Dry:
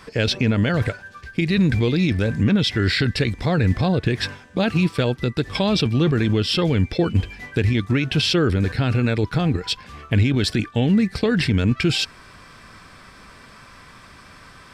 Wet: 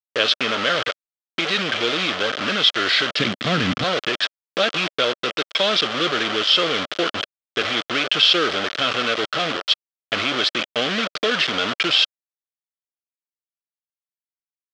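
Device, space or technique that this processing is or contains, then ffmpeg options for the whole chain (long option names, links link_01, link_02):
hand-held game console: -filter_complex "[0:a]acrusher=bits=3:mix=0:aa=0.000001,highpass=480,equalizer=frequency=590:width_type=q:width=4:gain=4,equalizer=frequency=900:width_type=q:width=4:gain=-8,equalizer=frequency=1300:width_type=q:width=4:gain=7,equalizer=frequency=3200:width_type=q:width=4:gain=9,lowpass=frequency=5200:width=0.5412,lowpass=frequency=5200:width=1.3066,asettb=1/sr,asplit=3[link_01][link_02][link_03];[link_01]atrim=end=3.194[link_04];[link_02]atrim=start=3.19:end=3.84,asetpts=PTS-STARTPTS,afade=type=in:duration=0.004:curve=qsin,afade=type=out:start_time=0.646:duration=0.004:curve=qsin,lowshelf=frequency=320:width_type=q:width=1.5:gain=11[link_05];[link_03]atrim=start=3.836[link_06];[link_04][link_05]acrossfade=duration=0.004:curve1=hsin:curve2=qsin[link_07];[link_07][link_06]acrossfade=duration=0.004:curve1=qsin:curve2=hsin,volume=1.5dB"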